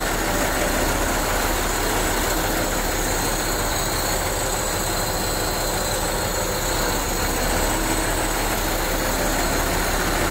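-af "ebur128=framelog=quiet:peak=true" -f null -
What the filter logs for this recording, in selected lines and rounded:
Integrated loudness:
  I:         -21.6 LUFS
  Threshold: -31.6 LUFS
Loudness range:
  LRA:         0.8 LU
  Threshold: -41.7 LUFS
  LRA low:   -22.1 LUFS
  LRA high:  -21.3 LUFS
True peak:
  Peak:       -8.5 dBFS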